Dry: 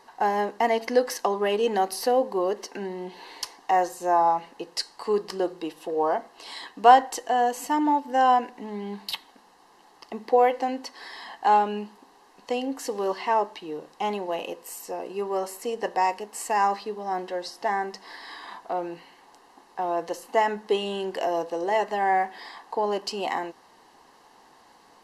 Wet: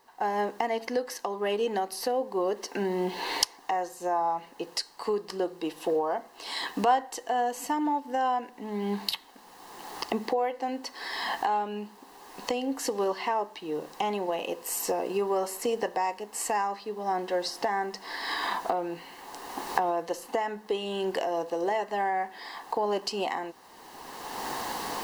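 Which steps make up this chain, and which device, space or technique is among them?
cheap recorder with automatic gain (white noise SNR 39 dB; recorder AGC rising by 23 dB/s); trim -9 dB

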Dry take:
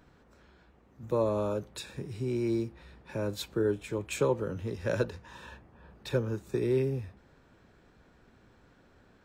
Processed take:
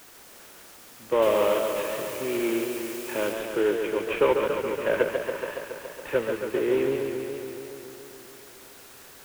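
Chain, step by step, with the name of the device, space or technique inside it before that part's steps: army field radio (band-pass 400–3100 Hz; CVSD coder 16 kbps; white noise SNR 21 dB); 1.22–3.33 s: treble shelf 2.8 kHz +9.5 dB; modulated delay 140 ms, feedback 76%, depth 109 cents, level -6 dB; trim +8 dB

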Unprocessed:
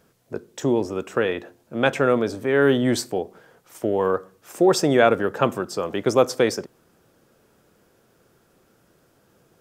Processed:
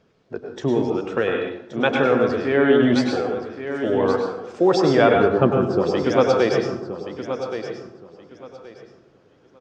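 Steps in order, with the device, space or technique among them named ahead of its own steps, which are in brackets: clip after many re-uploads (low-pass 5.2 kHz 24 dB/octave; coarse spectral quantiser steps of 15 dB); 5.15–5.93 s: tilt shelf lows +7 dB, about 830 Hz; feedback delay 1124 ms, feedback 22%, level -10 dB; plate-style reverb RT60 0.63 s, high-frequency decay 0.75×, pre-delay 90 ms, DRR 2 dB

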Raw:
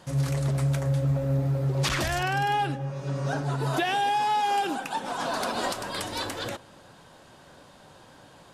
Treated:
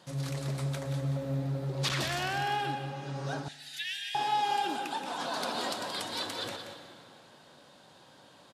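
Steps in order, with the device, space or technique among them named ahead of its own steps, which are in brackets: PA in a hall (high-pass 130 Hz 12 dB/octave; peaking EQ 3.9 kHz +6 dB 0.78 oct; delay 177 ms -9 dB; reverberation RT60 2.4 s, pre-delay 110 ms, DRR 9 dB); 3.48–4.15 s: elliptic high-pass 1.8 kHz, stop band 40 dB; spring tank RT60 1.7 s, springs 41 ms, chirp 50 ms, DRR 20 dB; trim -6.5 dB

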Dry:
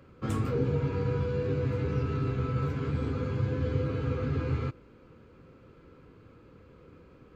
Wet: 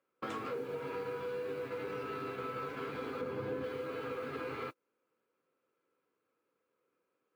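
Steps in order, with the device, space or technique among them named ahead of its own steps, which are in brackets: baby monitor (band-pass 480–4300 Hz; compression 6:1, threshold -47 dBFS, peak gain reduction 15.5 dB; white noise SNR 28 dB; gate -51 dBFS, range -31 dB); 3.21–3.64 s: tilt shelf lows +5 dB, about 810 Hz; trim +9.5 dB

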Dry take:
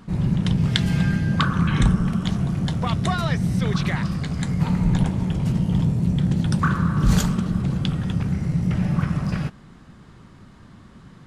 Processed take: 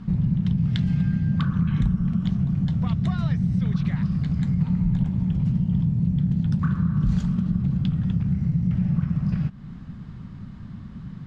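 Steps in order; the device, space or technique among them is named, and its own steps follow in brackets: jukebox (low-pass 5.1 kHz 12 dB/octave; resonant low shelf 270 Hz +10 dB, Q 1.5; compression 3:1, threshold -21 dBFS, peak gain reduction 14.5 dB); trim -2 dB

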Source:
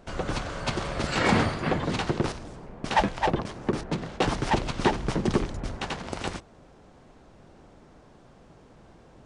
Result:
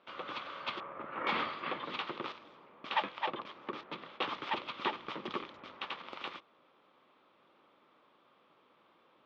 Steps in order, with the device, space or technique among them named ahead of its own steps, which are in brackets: phone earpiece (cabinet simulation 430–3800 Hz, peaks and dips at 430 Hz -4 dB, 710 Hz -8 dB, 1.2 kHz +8 dB, 1.6 kHz -4 dB, 2.4 kHz +4 dB, 3.4 kHz +7 dB); 0.80–1.27 s: Bessel low-pass 1.2 kHz, order 4; trim -8.5 dB

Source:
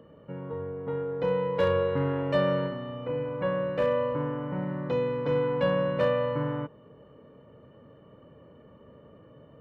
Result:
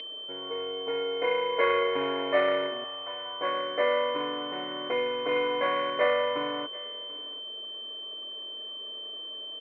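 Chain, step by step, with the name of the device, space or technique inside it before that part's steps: 2.84–3.41 s: elliptic band-stop 110–670 Hz; toy sound module (decimation joined by straight lines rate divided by 8×; class-D stage that switches slowly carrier 3.1 kHz; cabinet simulation 690–3600 Hz, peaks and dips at 880 Hz -6 dB, 1.3 kHz -4 dB, 2.1 kHz +10 dB, 3 kHz -9 dB); comb 2.8 ms, depth 68%; delay 739 ms -21 dB; trim +9 dB

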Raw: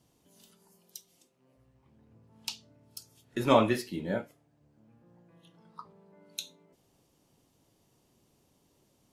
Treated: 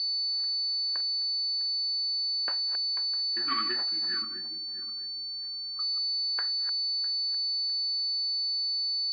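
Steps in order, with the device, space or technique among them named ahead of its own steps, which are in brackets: backward echo that repeats 327 ms, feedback 43%, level -10 dB; FFT band-reject 380–1100 Hz; toy sound module (decimation joined by straight lines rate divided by 8×; class-D stage that switches slowly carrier 4.5 kHz; cabinet simulation 670–4700 Hz, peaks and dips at 740 Hz +5 dB, 1.7 kHz +7 dB, 3.2 kHz +3 dB, 4.6 kHz +8 dB); 4.22–5.80 s: tilt EQ -3 dB/octave

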